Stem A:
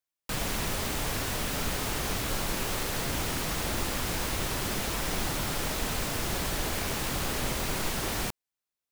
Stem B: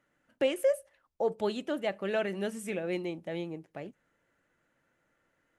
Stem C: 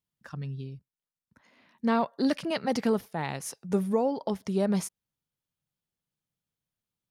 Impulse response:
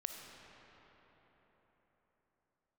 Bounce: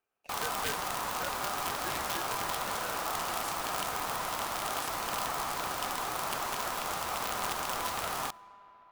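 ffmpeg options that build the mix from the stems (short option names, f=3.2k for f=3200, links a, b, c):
-filter_complex "[0:a]equalizer=f=250:w=0.8:g=9,volume=-4.5dB,asplit=2[a][b];[b]volume=-15.5dB[c];[1:a]lowpass=1.6k,volume=-8.5dB[d];[2:a]highpass=1.4k,volume=-5.5dB[e];[3:a]atrim=start_sample=2205[f];[c][f]afir=irnorm=-1:irlink=0[g];[a][d][e][g]amix=inputs=4:normalize=0,aeval=exprs='val(0)*sin(2*PI*1000*n/s)':c=same,aeval=exprs='(mod(15*val(0)+1,2)-1)/15':c=same"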